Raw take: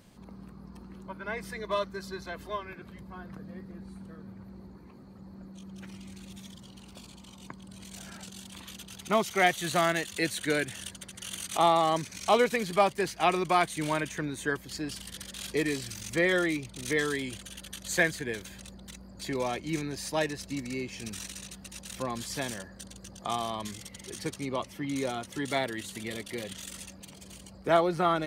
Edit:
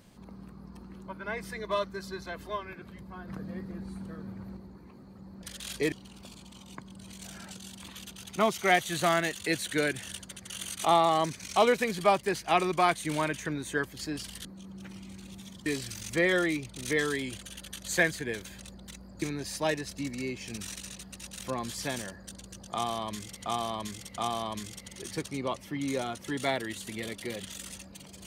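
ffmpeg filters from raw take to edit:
-filter_complex "[0:a]asplit=10[a][b][c][d][e][f][g][h][i][j];[a]atrim=end=3.282[k];[b]atrim=start=3.278:end=4.572,asetpts=PTS-STARTPTS,volume=4.5dB[l];[c]atrim=start=4.568:end=5.432[m];[d]atrim=start=15.168:end=15.662[n];[e]atrim=start=6.638:end=15.172[o];[f]atrim=start=5.428:end=6.642[p];[g]atrim=start=15.658:end=19.222[q];[h]atrim=start=19.738:end=23.982[r];[i]atrim=start=23.258:end=23.982[s];[j]atrim=start=23.258[t];[k][l]acrossfade=d=0.004:c1=hsin:c2=hsin[u];[u][m]acrossfade=d=0.004:c1=hsin:c2=hsin[v];[v][n]acrossfade=d=0.004:c1=hsin:c2=hsin[w];[w][o]acrossfade=d=0.004:c1=hsin:c2=hsin[x];[x][p]acrossfade=d=0.004:c1=hsin:c2=hsin[y];[y][q]acrossfade=d=0.004:c1=hsin:c2=hsin[z];[z][r]acrossfade=d=0.004:c1=hsin:c2=hsin[aa];[aa][s]acrossfade=d=0.004:c1=hsin:c2=hsin[ab];[ab][t]acrossfade=d=0.004:c1=hsin:c2=hsin"

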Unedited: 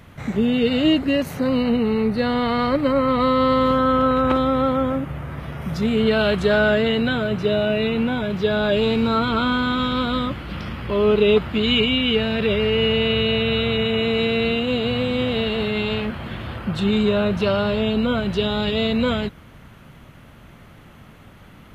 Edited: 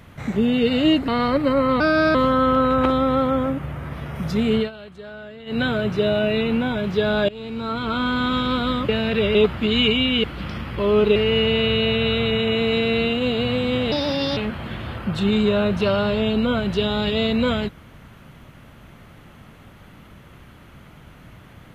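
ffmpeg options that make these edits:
-filter_complex "[0:a]asplit=13[a][b][c][d][e][f][g][h][i][j][k][l][m];[a]atrim=end=1.082[n];[b]atrim=start=2.468:end=3.194[o];[c]atrim=start=3.19:end=3.61,asetpts=PTS-STARTPTS,asetrate=53361,aresample=44100,atrim=end_sample=15307,asetpts=PTS-STARTPTS[p];[d]atrim=start=3.606:end=6.17,asetpts=PTS-STARTPTS,afade=t=out:st=2.414:d=0.15:silence=0.0944061[q];[e]atrim=start=6.17:end=6.92,asetpts=PTS-STARTPTS,volume=-20.5dB[r];[f]atrim=start=6.92:end=8.75,asetpts=PTS-STARTPTS,afade=t=in:d=0.15:silence=0.0944061,afade=t=out:st=1.826:d=0.004:c=hsin:silence=0.0794328[s];[g]atrim=start=8.75:end=10.352,asetpts=PTS-STARTPTS,afade=t=in:d=0.98:silence=0.0794328[t];[h]atrim=start=12.158:end=12.622[u];[i]atrim=start=11.268:end=12.162[v];[j]atrim=start=10.348:end=11.272[w];[k]atrim=start=12.618:end=15.384[x];[l]atrim=start=15.38:end=15.97,asetpts=PTS-STARTPTS,asetrate=57771,aresample=44100[y];[m]atrim=start=15.966[z];[n][o]acrossfade=d=0.004:c1=hsin:c2=hsin[aa];[aa][p]acrossfade=d=0.004:c1=hsin:c2=hsin[ab];[q][r][s][t]concat=n=4:v=0:a=1[ac];[ab][ac]acrossfade=d=0.004:c1=hsin:c2=hsin[ad];[ad][u]acrossfade=d=0.004:c1=hsin:c2=hsin[ae];[ae][v]acrossfade=d=0.004:c1=hsin:c2=hsin[af];[af][w]acrossfade=d=0.004:c1=hsin:c2=hsin[ag];[ag][x]acrossfade=d=0.004:c1=hsin:c2=hsin[ah];[ah][y]acrossfade=d=0.004:c1=hsin:c2=hsin[ai];[ai][z]acrossfade=d=0.004:c1=hsin:c2=hsin"

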